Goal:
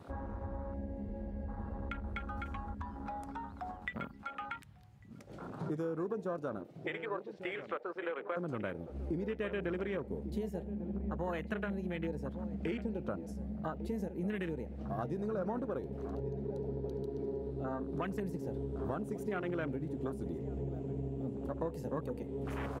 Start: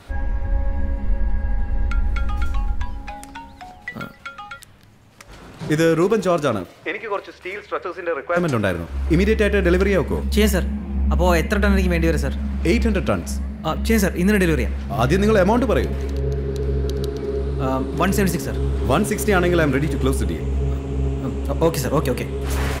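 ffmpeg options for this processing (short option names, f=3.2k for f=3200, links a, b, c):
-filter_complex "[0:a]highpass=120,acompressor=threshold=-35dB:ratio=4,asplit=2[a][b];[b]adelay=1148,lowpass=f=2.2k:p=1,volume=-10.5dB,asplit=2[c][d];[d]adelay=1148,lowpass=f=2.2k:p=1,volume=0.22,asplit=2[e][f];[f]adelay=1148,lowpass=f=2.2k:p=1,volume=0.22[g];[c][e][g]amix=inputs=3:normalize=0[h];[a][h]amix=inputs=2:normalize=0,afwtdn=0.0112,volume=-2.5dB"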